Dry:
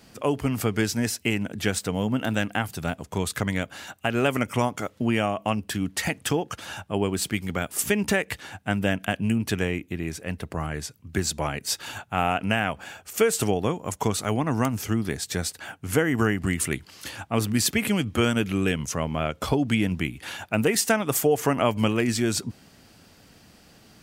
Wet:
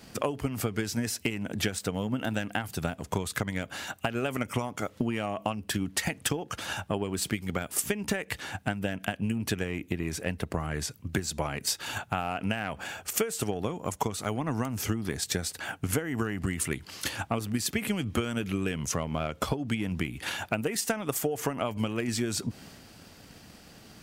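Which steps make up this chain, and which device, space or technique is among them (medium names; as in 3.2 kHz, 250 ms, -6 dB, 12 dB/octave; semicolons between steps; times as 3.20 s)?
drum-bus smash (transient shaper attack +8 dB, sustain +4 dB; compression 6:1, threshold -27 dBFS, peak gain reduction 17.5 dB; saturation -11.5 dBFS, distortion -27 dB); trim +1 dB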